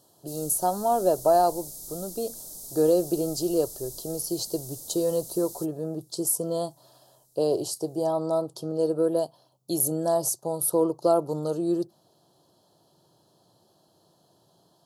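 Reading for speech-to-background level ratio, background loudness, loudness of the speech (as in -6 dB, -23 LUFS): 12.5 dB, -39.0 LUFS, -26.5 LUFS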